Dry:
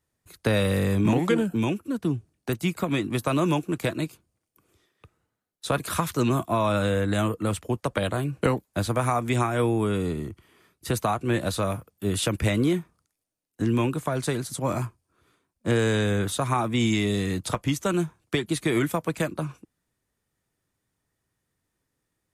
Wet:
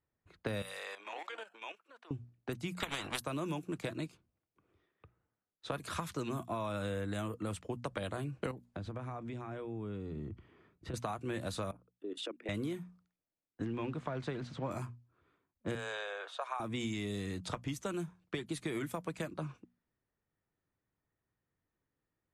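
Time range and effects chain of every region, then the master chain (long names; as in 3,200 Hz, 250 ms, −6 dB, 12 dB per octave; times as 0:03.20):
0:00.62–0:02.11: high-pass filter 620 Hz 24 dB per octave + high-shelf EQ 2,500 Hz +7.5 dB + output level in coarse steps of 12 dB
0:02.80–0:03.20: bass and treble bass +7 dB, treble −13 dB + transient designer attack +10 dB, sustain −3 dB + every bin compressed towards the loudest bin 10 to 1
0:08.51–0:10.94: low-shelf EQ 480 Hz +8.5 dB + downward compressor, threshold −31 dBFS
0:11.71–0:12.49: spectral envelope exaggerated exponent 1.5 + Butterworth high-pass 260 Hz 48 dB per octave + output level in coarse steps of 16 dB
0:13.65–0:14.71: converter with a step at zero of −39 dBFS + low-pass filter 3,200 Hz
0:15.75–0:16.60: Butterworth high-pass 540 Hz + high-shelf EQ 4,600 Hz −8 dB + notch filter 2,000 Hz, Q 9.9
whole clip: low-pass that shuts in the quiet parts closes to 2,200 Hz, open at −20.5 dBFS; mains-hum notches 60/120/180/240 Hz; downward compressor 4 to 1, threshold −28 dBFS; level −7 dB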